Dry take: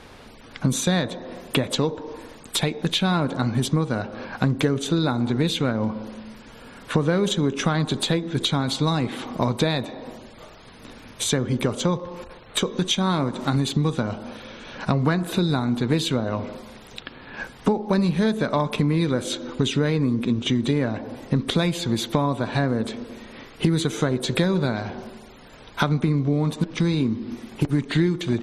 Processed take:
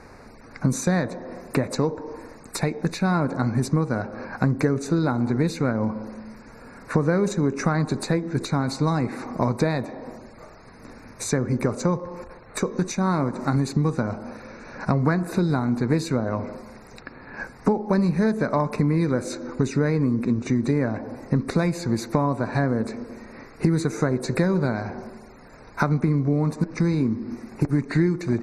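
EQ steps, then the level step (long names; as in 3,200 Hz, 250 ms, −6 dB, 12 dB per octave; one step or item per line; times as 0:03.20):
Butterworth band-reject 3,200 Hz, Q 1.5
high-shelf EQ 7,900 Hz −8 dB
0.0 dB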